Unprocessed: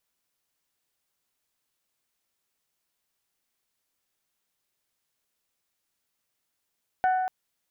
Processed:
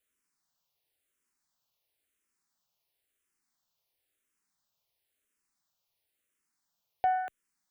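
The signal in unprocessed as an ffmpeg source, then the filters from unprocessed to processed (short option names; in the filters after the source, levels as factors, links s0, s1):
-f lavfi -i "aevalsrc='0.112*pow(10,-3*t/1.94)*sin(2*PI*745*t)+0.0355*pow(10,-3*t/1.194)*sin(2*PI*1490*t)+0.0112*pow(10,-3*t/1.051)*sin(2*PI*1788*t)+0.00355*pow(10,-3*t/0.899)*sin(2*PI*2235*t)+0.00112*pow(10,-3*t/0.735)*sin(2*PI*2980*t)':d=0.24:s=44100"
-filter_complex "[0:a]asplit=2[s0][s1];[s1]afreqshift=-0.97[s2];[s0][s2]amix=inputs=2:normalize=1"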